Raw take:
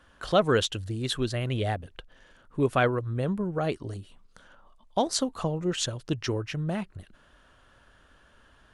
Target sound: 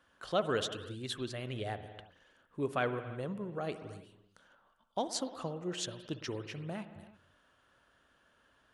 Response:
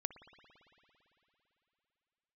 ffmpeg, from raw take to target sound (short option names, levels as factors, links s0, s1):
-filter_complex "[0:a]highpass=f=170:p=1[s0];[1:a]atrim=start_sample=2205,afade=t=out:st=0.4:d=0.01,atrim=end_sample=18081[s1];[s0][s1]afir=irnorm=-1:irlink=0,volume=0.473"